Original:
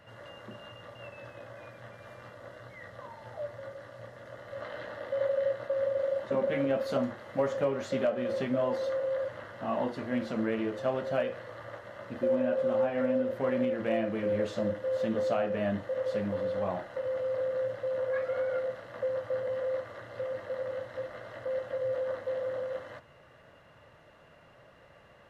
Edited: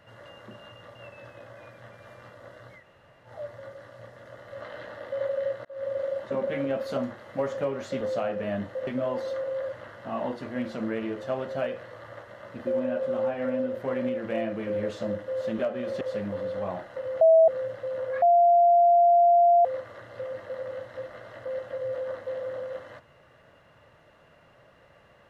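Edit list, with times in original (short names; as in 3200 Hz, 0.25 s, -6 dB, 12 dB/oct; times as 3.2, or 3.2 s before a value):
2.8–3.28 room tone, crossfade 0.10 s
5.65–5.92 fade in
8.01–8.43 swap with 15.15–16.01
17.21–17.48 bleep 650 Hz -13 dBFS
18.22–19.65 bleep 693 Hz -15 dBFS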